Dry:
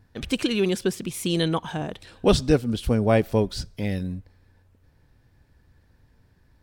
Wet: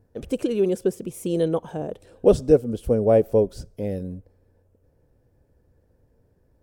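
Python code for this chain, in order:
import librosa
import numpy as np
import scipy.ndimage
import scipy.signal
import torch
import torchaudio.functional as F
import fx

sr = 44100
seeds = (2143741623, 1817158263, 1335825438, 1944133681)

y = fx.graphic_eq_10(x, sr, hz=(500, 1000, 2000, 4000), db=(12, -4, -7, -11))
y = y * librosa.db_to_amplitude(-4.0)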